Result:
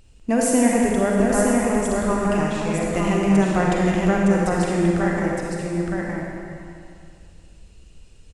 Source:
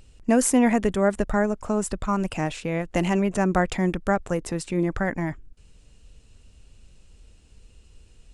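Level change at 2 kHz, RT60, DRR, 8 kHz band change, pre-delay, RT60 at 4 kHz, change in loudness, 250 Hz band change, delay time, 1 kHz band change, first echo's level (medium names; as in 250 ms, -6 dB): +3.5 dB, 2.5 s, -4.5 dB, +3.5 dB, 37 ms, 2.2 s, +3.5 dB, +4.5 dB, 913 ms, +3.5 dB, -3.5 dB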